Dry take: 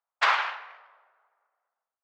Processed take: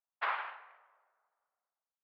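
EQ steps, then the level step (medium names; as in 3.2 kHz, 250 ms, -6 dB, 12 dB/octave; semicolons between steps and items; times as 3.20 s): distance through air 440 m; -8.5 dB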